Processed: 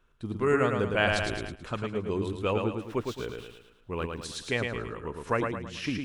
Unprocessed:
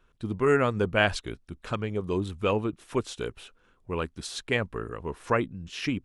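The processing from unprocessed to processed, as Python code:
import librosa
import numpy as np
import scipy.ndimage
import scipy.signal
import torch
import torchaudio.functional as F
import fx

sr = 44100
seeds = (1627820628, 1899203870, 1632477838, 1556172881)

y = fx.median_filter(x, sr, points=5, at=(2.81, 4.24))
y = fx.echo_feedback(y, sr, ms=109, feedback_pct=43, wet_db=-4.5)
y = fx.sustainer(y, sr, db_per_s=32.0, at=(1.03, 1.55))
y = y * 10.0 ** (-3.0 / 20.0)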